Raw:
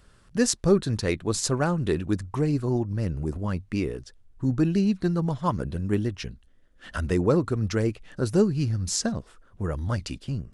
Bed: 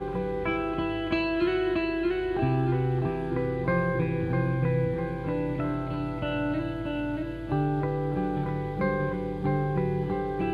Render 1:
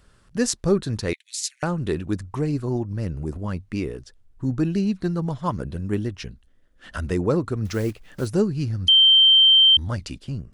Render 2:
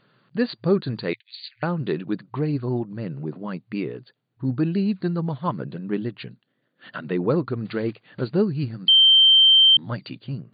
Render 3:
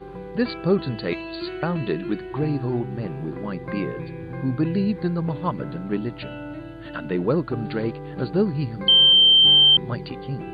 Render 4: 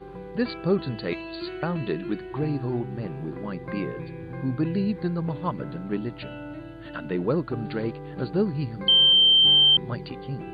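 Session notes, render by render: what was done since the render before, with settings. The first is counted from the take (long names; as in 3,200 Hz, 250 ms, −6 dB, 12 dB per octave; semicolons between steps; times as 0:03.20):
0:01.13–0:01.63: Butterworth high-pass 1,900 Hz 72 dB per octave; 0:07.65–0:08.29: one scale factor per block 5 bits; 0:08.88–0:09.77: beep over 3,130 Hz −10.5 dBFS
brick-wall band-pass 110–4,700 Hz
mix in bed −6.5 dB
level −3 dB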